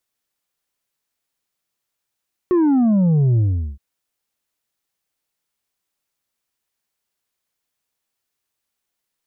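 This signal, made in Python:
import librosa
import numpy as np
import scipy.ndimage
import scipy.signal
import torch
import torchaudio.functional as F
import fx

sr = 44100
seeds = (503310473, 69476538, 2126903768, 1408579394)

y = fx.sub_drop(sr, level_db=-13.0, start_hz=370.0, length_s=1.27, drive_db=4.5, fade_s=0.4, end_hz=65.0)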